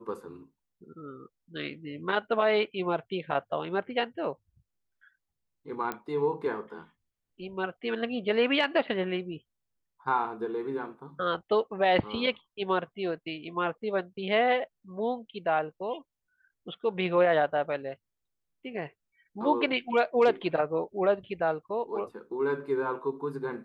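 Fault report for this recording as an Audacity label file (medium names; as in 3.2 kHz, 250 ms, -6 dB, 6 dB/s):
5.920000	5.920000	pop -18 dBFS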